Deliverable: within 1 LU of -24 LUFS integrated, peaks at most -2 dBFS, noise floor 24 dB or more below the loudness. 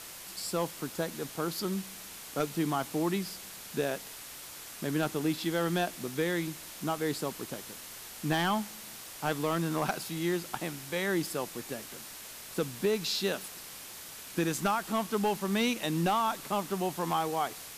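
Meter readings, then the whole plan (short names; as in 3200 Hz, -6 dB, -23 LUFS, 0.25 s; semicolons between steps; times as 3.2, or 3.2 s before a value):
clipped 0.2%; flat tops at -20.5 dBFS; noise floor -46 dBFS; noise floor target -57 dBFS; loudness -33.0 LUFS; peak -20.5 dBFS; loudness target -24.0 LUFS
-> clip repair -20.5 dBFS; noise print and reduce 11 dB; gain +9 dB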